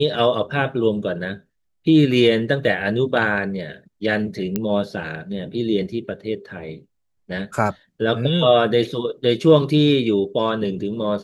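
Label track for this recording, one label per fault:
4.560000	4.560000	pop -8 dBFS

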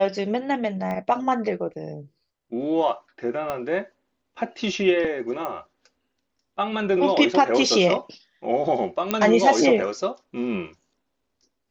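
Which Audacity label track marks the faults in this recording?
0.910000	0.910000	pop -19 dBFS
3.500000	3.500000	pop -14 dBFS
5.450000	5.450000	pop -17 dBFS
9.110000	9.110000	pop -7 dBFS

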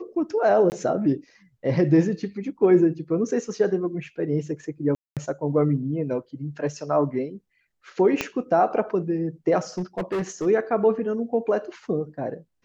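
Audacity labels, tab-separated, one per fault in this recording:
0.700000	0.720000	dropout 19 ms
4.950000	5.170000	dropout 217 ms
8.210000	8.210000	pop -9 dBFS
9.780000	10.470000	clipped -22.5 dBFS

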